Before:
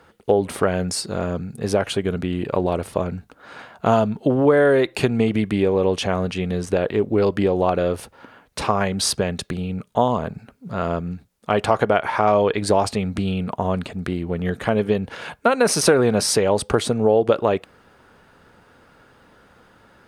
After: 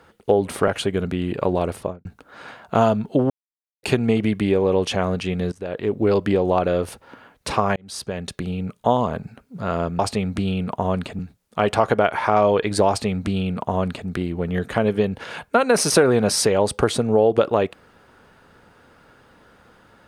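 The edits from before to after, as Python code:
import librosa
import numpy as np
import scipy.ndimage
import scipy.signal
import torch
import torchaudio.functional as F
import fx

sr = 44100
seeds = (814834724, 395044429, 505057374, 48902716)

y = fx.studio_fade_out(x, sr, start_s=2.85, length_s=0.31)
y = fx.edit(y, sr, fx.cut(start_s=0.68, length_s=1.11),
    fx.silence(start_s=4.41, length_s=0.53),
    fx.fade_in_from(start_s=6.63, length_s=0.5, floor_db=-21.5),
    fx.fade_in_span(start_s=8.87, length_s=0.75),
    fx.duplicate(start_s=12.79, length_s=1.2, to_s=11.1), tone=tone)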